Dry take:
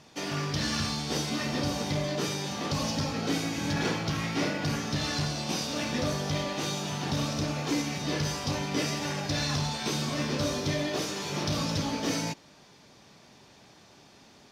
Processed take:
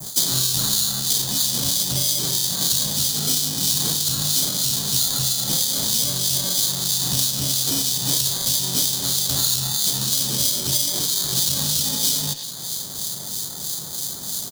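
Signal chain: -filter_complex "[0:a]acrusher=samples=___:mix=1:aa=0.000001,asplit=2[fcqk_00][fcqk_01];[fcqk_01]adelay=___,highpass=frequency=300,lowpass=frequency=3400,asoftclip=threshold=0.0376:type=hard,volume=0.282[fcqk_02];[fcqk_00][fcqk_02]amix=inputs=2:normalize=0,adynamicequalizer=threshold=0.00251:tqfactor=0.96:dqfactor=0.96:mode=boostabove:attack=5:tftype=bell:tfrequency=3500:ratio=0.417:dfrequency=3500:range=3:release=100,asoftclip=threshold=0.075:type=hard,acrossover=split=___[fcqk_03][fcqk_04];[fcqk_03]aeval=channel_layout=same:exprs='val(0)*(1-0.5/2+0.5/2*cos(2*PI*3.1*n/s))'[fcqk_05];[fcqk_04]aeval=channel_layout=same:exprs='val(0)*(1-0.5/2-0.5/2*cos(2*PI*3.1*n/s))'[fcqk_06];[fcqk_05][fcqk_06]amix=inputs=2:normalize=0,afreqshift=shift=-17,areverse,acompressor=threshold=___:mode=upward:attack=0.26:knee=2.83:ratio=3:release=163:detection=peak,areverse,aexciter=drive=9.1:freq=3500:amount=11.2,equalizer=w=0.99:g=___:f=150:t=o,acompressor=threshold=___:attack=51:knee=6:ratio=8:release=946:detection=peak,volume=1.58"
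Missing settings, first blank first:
16, 100, 2300, 0.0141, 9.5, 0.0794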